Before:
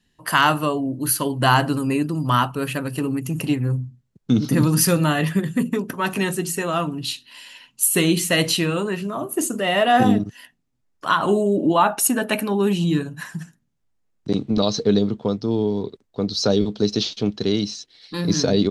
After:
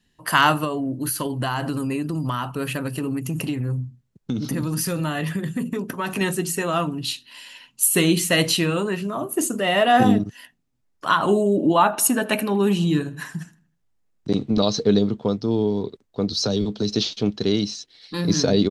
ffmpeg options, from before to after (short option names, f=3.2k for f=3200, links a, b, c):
-filter_complex "[0:a]asettb=1/sr,asplit=3[a][b][c];[a]atrim=end=0.644[d];[b]atrim=start=0.64:end=6.21,asetpts=PTS-STARTPTS,afade=t=in:d=0.004:c=qsin,afade=t=out:st=5.566:d=0.004:c=qsin,acompressor=threshold=-21dB:ratio=6:attack=3.2:release=140:knee=1:detection=peak[e];[c]atrim=start=6.206[f];[d][e]acrossfade=d=0.004:c1=hsin:c2=qsin[g];[g][f]acrossfade=d=0.004:c1=qsin:c2=hsin,asplit=3[h][i][j];[h]afade=t=out:st=11.92:d=0.02[k];[i]asplit=2[l][m];[m]adelay=79,lowpass=f=3.9k:p=1,volume=-18.5dB,asplit=2[n][o];[o]adelay=79,lowpass=f=3.9k:p=1,volume=0.45,asplit=2[p][q];[q]adelay=79,lowpass=f=3.9k:p=1,volume=0.45,asplit=2[r][s];[s]adelay=79,lowpass=f=3.9k:p=1,volume=0.45[t];[l][n][p][r][t]amix=inputs=5:normalize=0,afade=t=in:st=11.92:d=0.02,afade=t=out:st=14.43:d=0.02[u];[j]afade=t=in:st=14.43:d=0.02[v];[k][u][v]amix=inputs=3:normalize=0,asettb=1/sr,asplit=3[w][x][y];[w]atrim=end=16.324[z];[x]atrim=start=16.32:end=16.96,asetpts=PTS-STARTPTS,afade=t=in:d=0.004:c=qsin,afade=t=out:st=0.636:d=0.004:c=qsin,acrossover=split=190|3000[aa][ab][ac];[ab]acompressor=threshold=-21dB:ratio=6:attack=3.2:release=140:knee=2.83:detection=peak[ad];[aa][ad][ac]amix=inputs=3:normalize=0[ae];[y]atrim=start=16.956[af];[z][ae]acrossfade=d=0.004:c1=hsin:c2=qsin[ag];[ag][af]acrossfade=d=0.004:c1=qsin:c2=hsin"